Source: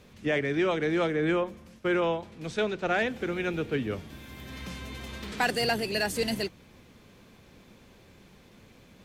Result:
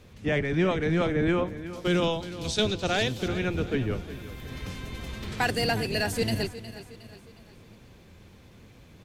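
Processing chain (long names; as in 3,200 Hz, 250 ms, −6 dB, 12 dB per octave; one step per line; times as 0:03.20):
sub-octave generator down 1 octave, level +2 dB
0:01.73–0:03.28: high shelf with overshoot 2,800 Hz +11 dB, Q 1.5
repeating echo 362 ms, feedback 44%, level −14.5 dB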